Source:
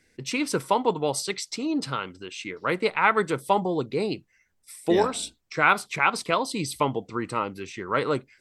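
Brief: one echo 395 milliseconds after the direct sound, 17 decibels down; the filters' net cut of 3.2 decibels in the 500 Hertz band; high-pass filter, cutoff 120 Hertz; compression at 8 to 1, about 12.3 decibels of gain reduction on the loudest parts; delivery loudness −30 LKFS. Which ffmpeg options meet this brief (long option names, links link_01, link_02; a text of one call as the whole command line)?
ffmpeg -i in.wav -af "highpass=120,equalizer=frequency=500:width_type=o:gain=-4,acompressor=threshold=-28dB:ratio=8,aecho=1:1:395:0.141,volume=4dB" out.wav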